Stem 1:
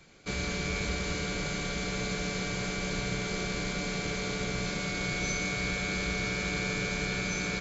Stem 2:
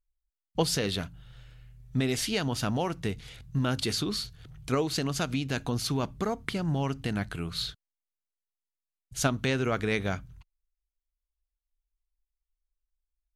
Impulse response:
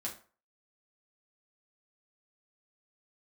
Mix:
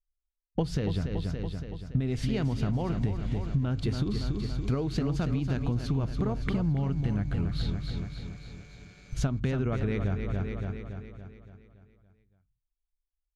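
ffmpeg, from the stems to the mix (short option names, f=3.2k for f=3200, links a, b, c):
-filter_complex "[0:a]aeval=exprs='(tanh(15.8*val(0)+0.7)-tanh(0.7))/15.8':c=same,adelay=1800,volume=-20dB[a];[1:a]agate=range=-23dB:threshold=-46dB:ratio=16:detection=peak,aemphasis=mode=reproduction:type=riaa,volume=1dB,asplit=2[b][c];[c]volume=-8.5dB,aecho=0:1:283|566|849|1132|1415|1698|1981|2264:1|0.52|0.27|0.141|0.0731|0.038|0.0198|0.0103[d];[a][b][d]amix=inputs=3:normalize=0,acompressor=threshold=-25dB:ratio=6"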